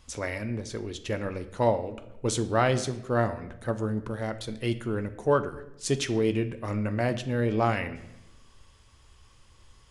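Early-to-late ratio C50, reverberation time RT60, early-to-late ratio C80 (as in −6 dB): 13.5 dB, 0.95 s, 16.0 dB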